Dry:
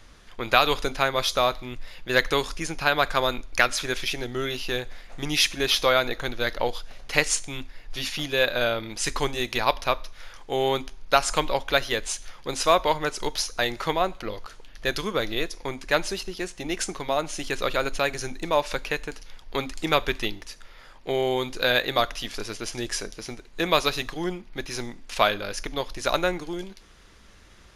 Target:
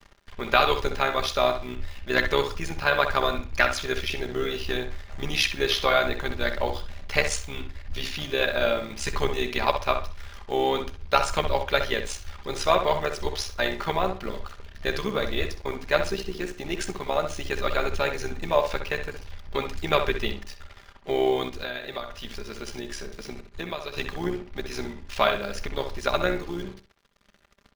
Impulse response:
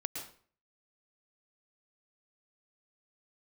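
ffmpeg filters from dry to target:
-filter_complex "[0:a]acrusher=bits=6:mix=0:aa=0.5,equalizer=frequency=9600:width_type=o:width=1.6:gain=-7.5,aecho=1:1:5:0.58,tremolo=f=67:d=0.667,asplit=2[link_01][link_02];[link_02]adelay=64,lowpass=frequency=2900:poles=1,volume=-7dB,asplit=2[link_03][link_04];[link_04]adelay=64,lowpass=frequency=2900:poles=1,volume=0.26,asplit=2[link_05][link_06];[link_06]adelay=64,lowpass=frequency=2900:poles=1,volume=0.26[link_07];[link_01][link_03][link_05][link_07]amix=inputs=4:normalize=0,asplit=3[link_08][link_09][link_10];[link_08]afade=type=out:start_time=21.48:duration=0.02[link_11];[link_09]acompressor=threshold=-32dB:ratio=5,afade=type=in:start_time=21.48:duration=0.02,afade=type=out:start_time=23.96:duration=0.02[link_12];[link_10]afade=type=in:start_time=23.96:duration=0.02[link_13];[link_11][link_12][link_13]amix=inputs=3:normalize=0,volume=1dB"

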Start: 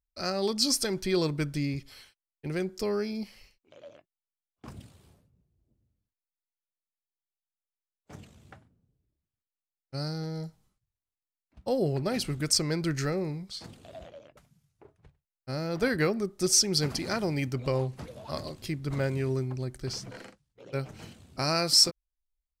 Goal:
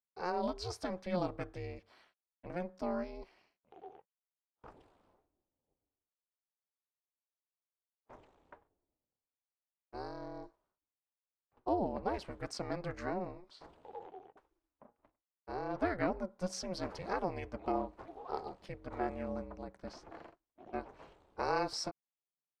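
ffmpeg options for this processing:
ffmpeg -i in.wav -af "bandpass=frequency=760:width_type=q:width=1.4:csg=0,aeval=exprs='val(0)*sin(2*PI*180*n/s)':channel_layout=same,volume=2.5dB" out.wav

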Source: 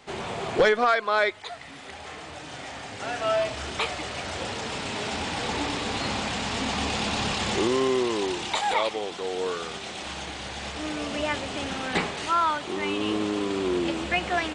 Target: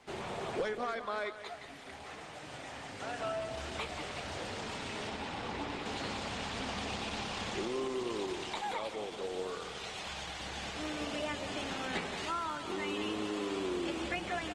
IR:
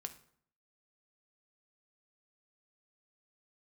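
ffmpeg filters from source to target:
-filter_complex "[0:a]asettb=1/sr,asplit=3[link_01][link_02][link_03];[link_01]atrim=end=2.074[link_04];[link_02]atrim=start=2.07:end=2.47,asetpts=PTS-STARTPTS,afade=type=in:duration=0.004:curve=qsin,afade=type=out:start_time=0.396:duration=0.004:curve=qsin,highpass=frequency=98:width=0.5412,highpass=frequency=98:width=1.3066[link_05];[link_03]atrim=start=2.466[link_06];[link_04][link_05]acrossfade=duration=0.004:curve1=hsin:curve2=qsin[link_07];[link_07][link_06]acrossfade=duration=0.004:curve1=qsin:curve2=hsin,asettb=1/sr,asplit=3[link_08][link_09][link_10];[link_08]atrim=end=9.504[link_11];[link_09]atrim=start=9.5:end=10.4,asetpts=PTS-STARTPTS,afade=type=in:duration=0.004:curve=qsin,afade=type=out:start_time=0.896:duration=0.004:curve=qsin,equalizer=frequency=300:width_type=o:width=1:gain=-8.5[link_12];[link_10]atrim=start=10.396[link_13];[link_11][link_12]acrossfade=duration=0.004:curve1=hsin:curve2=qsin[link_14];[link_14][link_13]acrossfade=duration=0.004:curve1=qsin:curve2=hsin,acrossover=split=320|6400[link_15][link_16][link_17];[link_15]acompressor=threshold=-37dB:ratio=4[link_18];[link_16]acompressor=threshold=-29dB:ratio=4[link_19];[link_17]acompressor=threshold=-50dB:ratio=4[link_20];[link_18][link_19][link_20]amix=inputs=3:normalize=0,asettb=1/sr,asplit=3[link_21][link_22][link_23];[link_21]atrim=end=5.094[link_24];[link_22]atrim=start=5.09:end=5.86,asetpts=PTS-STARTPTS,afade=type=in:duration=0.004:curve=qsin,afade=type=out:start_time=0.766:duration=0.004:curve=qsin,highshelf=frequency=5400:gain=-11[link_25];[link_23]atrim=start=5.856[link_26];[link_24][link_25]acrossfade=duration=0.004:curve1=hsin:curve2=qsin[link_27];[link_27][link_26]acrossfade=duration=0.004:curve1=qsin:curve2=hsin,aecho=1:1:179|358|537|716|895:0.316|0.149|0.0699|0.0328|0.0154,volume=-6dB" -ar 48000 -c:a libopus -b:a 20k

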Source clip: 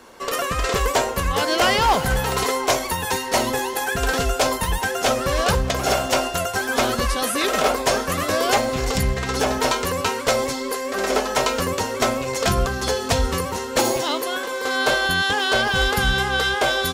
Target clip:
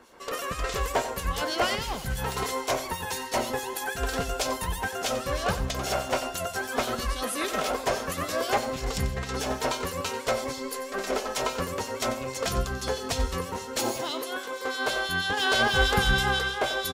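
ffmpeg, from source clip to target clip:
ffmpeg -i in.wav -filter_complex "[0:a]asettb=1/sr,asplit=3[link_01][link_02][link_03];[link_01]atrim=end=1.754[link_04];[link_02]atrim=start=1.75:end=2.18,asetpts=PTS-STARTPTS,afade=type=in:duration=0.004:curve=qsin,afade=type=out:start_time=0.426:duration=0.004:curve=qsin,equalizer=frequency=780:width=0.5:gain=-10.5[link_05];[link_03]atrim=start=2.176[link_06];[link_04][link_05]acrossfade=duration=0.004:curve1=hsin:curve2=qsin[link_07];[link_07][link_06]acrossfade=duration=0.004:curve1=qsin:curve2=hsin,asettb=1/sr,asplit=3[link_08][link_09][link_10];[link_08]atrim=end=15.374[link_11];[link_09]atrim=start=15.37:end=16.39,asetpts=PTS-STARTPTS,afade=type=in:duration=0.004:curve=qsin,afade=type=out:start_time=1.016:duration=0.004:curve=qsin,acontrast=30[link_12];[link_10]atrim=start=16.386[link_13];[link_11][link_12]acrossfade=duration=0.004:curve1=hsin:curve2=qsin[link_14];[link_14][link_13]acrossfade=duration=0.004:curve1=qsin:curve2=hsin,acrossover=split=2500[link_15][link_16];[link_15]aeval=exprs='val(0)*(1-0.7/2+0.7/2*cos(2*PI*6.2*n/s))':channel_layout=same[link_17];[link_16]aeval=exprs='val(0)*(1-0.7/2-0.7/2*cos(2*PI*6.2*n/s))':channel_layout=same[link_18];[link_17][link_18]amix=inputs=2:normalize=0,asettb=1/sr,asplit=3[link_19][link_20][link_21];[link_19]atrim=end=10.604[link_22];[link_20]atrim=start=10.6:end=11.38,asetpts=PTS-STARTPTS,afade=type=in:duration=0.004:curve=qsin,afade=type=out:start_time=0.776:duration=0.004:curve=qsin,aeval=exprs='0.299*(cos(1*acos(clip(val(0)/0.299,-1,1)))-cos(1*PI/2))+0.00335*(cos(6*acos(clip(val(0)/0.299,-1,1)))-cos(6*PI/2))+0.00668*(cos(8*acos(clip(val(0)/0.299,-1,1)))-cos(8*PI/2))':channel_layout=same[link_23];[link_21]atrim=start=11.376[link_24];[link_22][link_23]acrossfade=duration=0.004:curve1=hsin:curve2=qsin[link_25];[link_25][link_24]acrossfade=duration=0.004:curve1=qsin:curve2=hsin,aecho=1:1:91:0.237,volume=-5dB" out.wav

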